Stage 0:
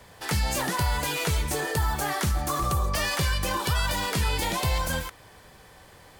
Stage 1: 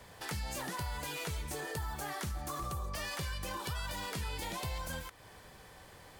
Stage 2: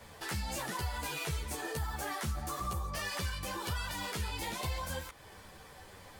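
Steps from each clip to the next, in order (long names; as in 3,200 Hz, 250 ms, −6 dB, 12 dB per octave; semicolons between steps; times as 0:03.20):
downward compressor 2 to 1, threshold −40 dBFS, peak gain reduction 10 dB; level −3.5 dB
string-ensemble chorus; level +5 dB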